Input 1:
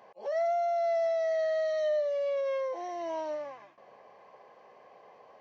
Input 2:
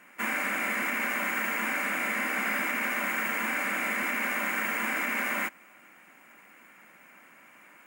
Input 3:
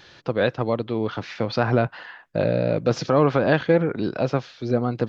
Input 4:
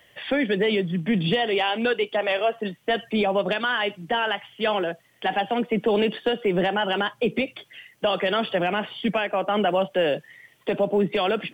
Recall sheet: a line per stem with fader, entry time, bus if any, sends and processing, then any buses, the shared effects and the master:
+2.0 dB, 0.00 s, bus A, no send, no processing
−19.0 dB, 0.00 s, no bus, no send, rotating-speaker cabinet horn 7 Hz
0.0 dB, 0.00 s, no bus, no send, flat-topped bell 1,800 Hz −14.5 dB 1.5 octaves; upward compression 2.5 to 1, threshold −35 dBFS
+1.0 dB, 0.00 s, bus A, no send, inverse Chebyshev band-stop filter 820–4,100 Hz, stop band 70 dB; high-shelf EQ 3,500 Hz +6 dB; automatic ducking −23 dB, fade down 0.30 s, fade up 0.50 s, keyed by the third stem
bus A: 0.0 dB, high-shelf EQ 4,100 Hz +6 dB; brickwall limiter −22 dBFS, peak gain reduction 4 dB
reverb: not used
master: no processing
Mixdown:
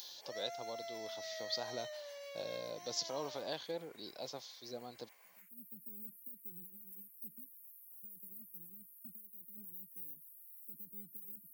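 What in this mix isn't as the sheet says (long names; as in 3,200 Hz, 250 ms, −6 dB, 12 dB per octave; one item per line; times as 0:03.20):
stem 2 −19.0 dB → −26.0 dB
master: extra first difference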